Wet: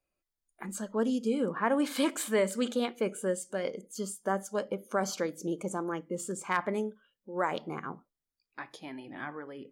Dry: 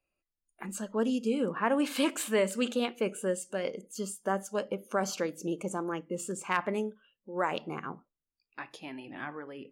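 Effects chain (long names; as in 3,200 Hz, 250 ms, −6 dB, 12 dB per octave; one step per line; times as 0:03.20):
notch filter 2,700 Hz, Q 5.5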